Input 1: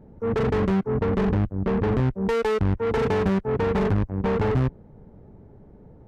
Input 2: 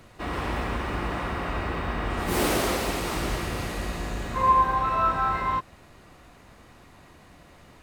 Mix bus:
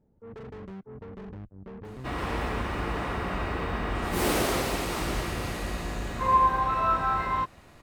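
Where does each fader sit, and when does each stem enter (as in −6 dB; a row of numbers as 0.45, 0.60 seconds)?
−19.5, −1.5 decibels; 0.00, 1.85 seconds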